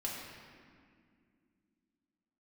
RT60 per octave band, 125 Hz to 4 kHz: 2.9, 3.6, 2.5, 1.9, 1.9, 1.4 s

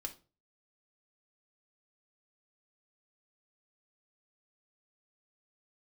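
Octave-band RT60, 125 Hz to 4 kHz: 0.50, 0.40, 0.40, 0.30, 0.25, 0.25 s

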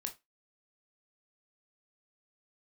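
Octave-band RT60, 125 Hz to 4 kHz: 0.15, 0.20, 0.20, 0.20, 0.20, 0.20 s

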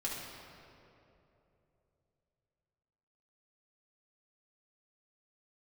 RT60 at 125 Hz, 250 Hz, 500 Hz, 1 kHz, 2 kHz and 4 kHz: 4.0, 3.1, 3.4, 2.6, 2.1, 1.7 s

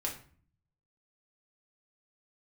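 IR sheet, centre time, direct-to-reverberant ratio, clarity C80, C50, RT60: 21 ms, -2.0 dB, 13.5 dB, 8.5 dB, 0.45 s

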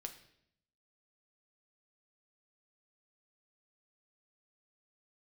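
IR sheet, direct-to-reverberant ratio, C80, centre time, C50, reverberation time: 5.0 dB, 14.0 dB, 11 ms, 11.0 dB, 0.70 s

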